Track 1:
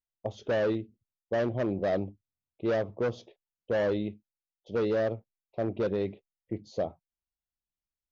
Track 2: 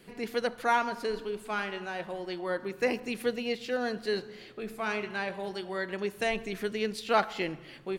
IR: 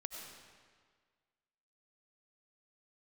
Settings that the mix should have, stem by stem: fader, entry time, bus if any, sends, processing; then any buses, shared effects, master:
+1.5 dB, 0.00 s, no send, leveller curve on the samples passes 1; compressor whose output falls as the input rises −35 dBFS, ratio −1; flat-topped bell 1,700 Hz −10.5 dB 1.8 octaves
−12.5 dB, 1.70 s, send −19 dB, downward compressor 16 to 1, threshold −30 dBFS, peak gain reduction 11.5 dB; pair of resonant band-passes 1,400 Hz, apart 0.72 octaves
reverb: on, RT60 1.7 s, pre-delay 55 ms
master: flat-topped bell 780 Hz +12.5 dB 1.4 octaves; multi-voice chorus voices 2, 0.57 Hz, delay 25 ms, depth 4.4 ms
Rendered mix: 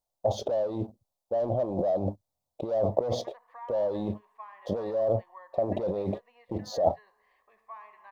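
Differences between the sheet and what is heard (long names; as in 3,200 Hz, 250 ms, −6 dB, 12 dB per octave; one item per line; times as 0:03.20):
stem 2: entry 1.70 s → 2.90 s
master: missing multi-voice chorus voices 2, 0.57 Hz, delay 25 ms, depth 4.4 ms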